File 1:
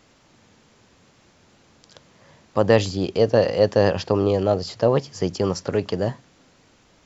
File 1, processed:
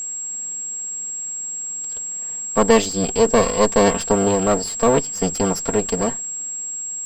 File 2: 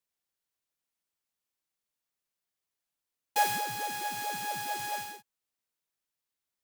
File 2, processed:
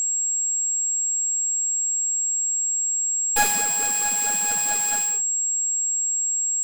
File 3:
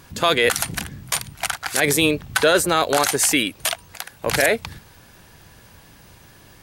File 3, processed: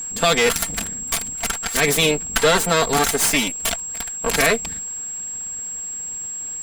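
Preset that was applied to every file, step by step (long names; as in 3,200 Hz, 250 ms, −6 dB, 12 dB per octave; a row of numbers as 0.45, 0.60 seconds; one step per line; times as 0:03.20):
lower of the sound and its delayed copy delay 4.4 ms
steady tone 7,600 Hz −28 dBFS
loudness normalisation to −20 LKFS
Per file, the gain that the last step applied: +2.5, +7.5, +1.0 decibels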